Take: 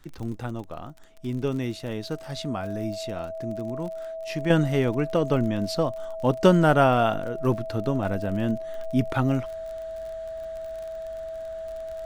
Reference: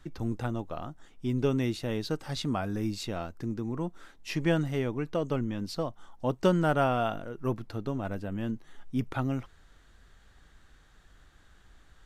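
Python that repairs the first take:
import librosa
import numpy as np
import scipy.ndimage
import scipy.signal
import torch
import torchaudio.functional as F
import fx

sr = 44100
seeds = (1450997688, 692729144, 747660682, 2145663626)

y = fx.fix_declick_ar(x, sr, threshold=6.5)
y = fx.notch(y, sr, hz=650.0, q=30.0)
y = fx.gain(y, sr, db=fx.steps((0.0, 0.0), (4.5, -7.0)))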